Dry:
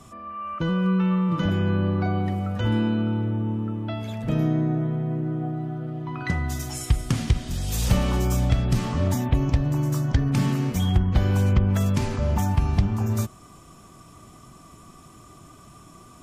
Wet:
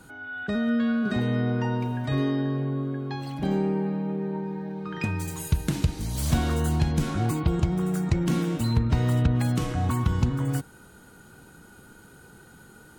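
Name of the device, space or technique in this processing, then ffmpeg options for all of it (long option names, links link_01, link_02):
nightcore: -af "asetrate=55125,aresample=44100,volume=-2.5dB"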